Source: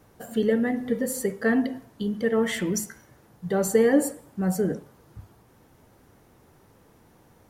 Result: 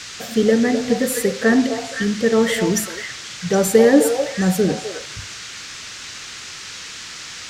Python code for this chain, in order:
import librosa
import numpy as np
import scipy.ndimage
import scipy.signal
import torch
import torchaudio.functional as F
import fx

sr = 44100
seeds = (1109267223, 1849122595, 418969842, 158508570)

y = fx.dmg_noise_band(x, sr, seeds[0], low_hz=1200.0, high_hz=7000.0, level_db=-42.0)
y = fx.echo_stepped(y, sr, ms=256, hz=690.0, octaves=1.4, feedback_pct=70, wet_db=-3.0)
y = y * librosa.db_to_amplitude(7.0)